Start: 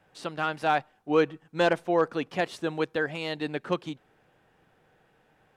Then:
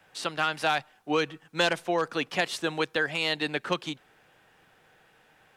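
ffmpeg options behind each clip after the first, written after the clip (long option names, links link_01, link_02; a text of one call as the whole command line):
ffmpeg -i in.wav -filter_complex "[0:a]tiltshelf=frequency=970:gain=-5.5,acrossover=split=180|3000[link_01][link_02][link_03];[link_02]acompressor=threshold=-27dB:ratio=6[link_04];[link_01][link_04][link_03]amix=inputs=3:normalize=0,volume=4dB" out.wav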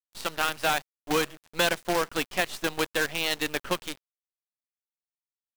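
ffmpeg -i in.wav -af "acrusher=bits=5:dc=4:mix=0:aa=0.000001" out.wav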